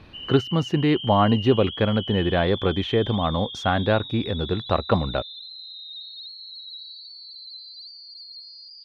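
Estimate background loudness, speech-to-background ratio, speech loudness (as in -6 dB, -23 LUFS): -34.5 LUFS, 11.5 dB, -23.0 LUFS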